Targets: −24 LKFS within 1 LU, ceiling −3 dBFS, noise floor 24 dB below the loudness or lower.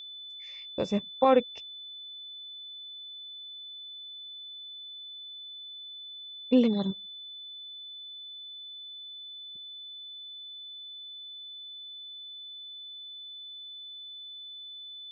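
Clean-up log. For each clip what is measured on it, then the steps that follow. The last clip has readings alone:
interfering tone 3,500 Hz; level of the tone −41 dBFS; integrated loudness −35.0 LKFS; sample peak −10.0 dBFS; target loudness −24.0 LKFS
→ notch filter 3,500 Hz, Q 30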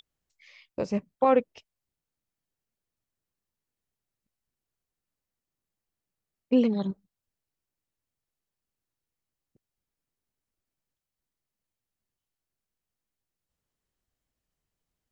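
interfering tone none found; integrated loudness −26.5 LKFS; sample peak −10.5 dBFS; target loudness −24.0 LKFS
→ level +2.5 dB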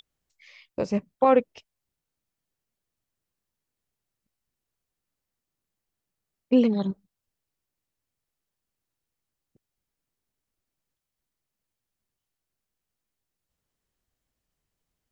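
integrated loudness −24.0 LKFS; sample peak −8.0 dBFS; background noise floor −86 dBFS

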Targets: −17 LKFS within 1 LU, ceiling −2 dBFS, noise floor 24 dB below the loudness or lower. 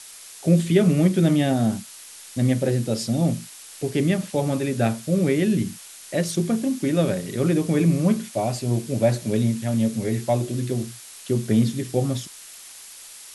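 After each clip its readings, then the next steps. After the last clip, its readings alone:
background noise floor −43 dBFS; target noise floor −47 dBFS; integrated loudness −22.5 LKFS; sample peak −5.5 dBFS; target loudness −17.0 LKFS
→ noise reduction from a noise print 6 dB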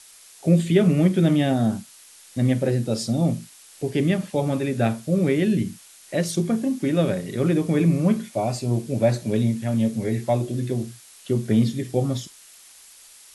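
background noise floor −49 dBFS; integrated loudness −23.0 LKFS; sample peak −5.5 dBFS; target loudness −17.0 LKFS
→ level +6 dB
brickwall limiter −2 dBFS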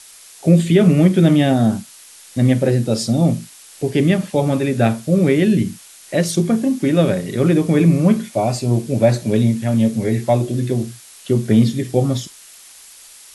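integrated loudness −17.0 LKFS; sample peak −2.0 dBFS; background noise floor −43 dBFS

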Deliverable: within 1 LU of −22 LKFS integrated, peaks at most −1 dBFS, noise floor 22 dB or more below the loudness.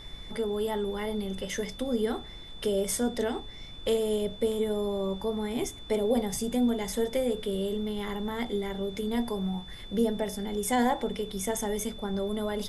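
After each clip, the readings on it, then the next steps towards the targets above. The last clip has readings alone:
interfering tone 3,500 Hz; level of the tone −46 dBFS; background noise floor −44 dBFS; target noise floor −53 dBFS; integrated loudness −30.5 LKFS; sample peak −14.5 dBFS; target loudness −22.0 LKFS
→ notch filter 3,500 Hz, Q 30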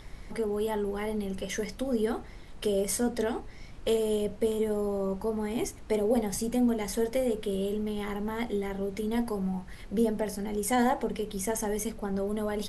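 interfering tone none found; background noise floor −46 dBFS; target noise floor −53 dBFS
→ noise reduction from a noise print 7 dB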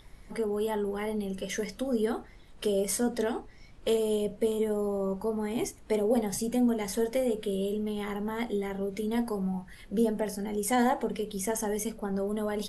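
background noise floor −52 dBFS; target noise floor −53 dBFS
→ noise reduction from a noise print 6 dB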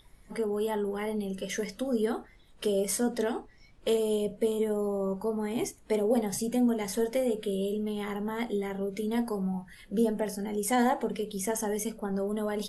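background noise floor −56 dBFS; integrated loudness −30.5 LKFS; sample peak −14.5 dBFS; target loudness −22.0 LKFS
→ level +8.5 dB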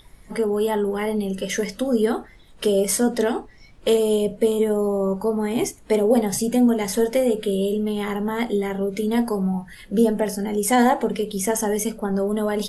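integrated loudness −22.0 LKFS; sample peak −6.0 dBFS; background noise floor −48 dBFS

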